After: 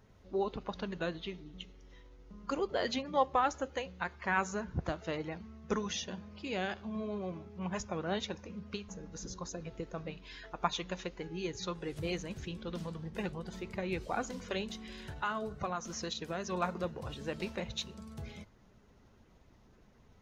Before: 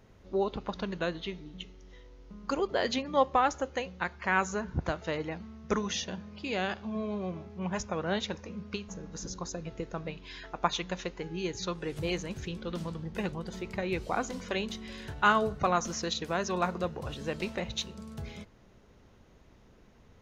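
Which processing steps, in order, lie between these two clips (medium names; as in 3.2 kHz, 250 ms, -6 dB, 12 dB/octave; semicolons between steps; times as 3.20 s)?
coarse spectral quantiser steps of 15 dB; 14.61–16.52 s: compression 2.5:1, threshold -32 dBFS, peak gain reduction 9 dB; trim -3.5 dB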